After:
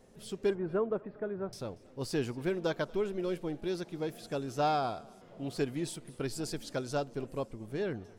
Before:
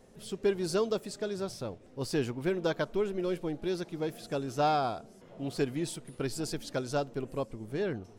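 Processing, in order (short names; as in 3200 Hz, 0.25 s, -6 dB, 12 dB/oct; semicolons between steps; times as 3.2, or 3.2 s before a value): 0.5–1.53 inverse Chebyshev low-pass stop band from 7500 Hz, stop band 70 dB; on a send: thinning echo 0.234 s, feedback 33%, level -22.5 dB; on the sum: gain -2 dB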